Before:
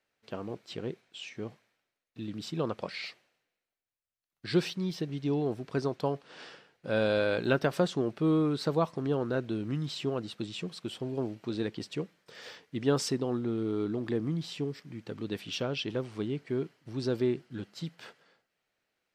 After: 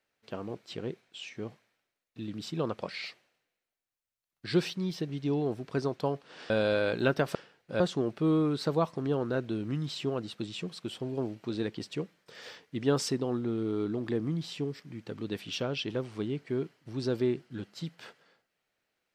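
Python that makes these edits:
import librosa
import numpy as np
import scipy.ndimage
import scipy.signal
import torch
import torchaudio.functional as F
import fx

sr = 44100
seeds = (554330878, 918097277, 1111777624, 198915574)

y = fx.edit(x, sr, fx.move(start_s=6.5, length_s=0.45, to_s=7.8), tone=tone)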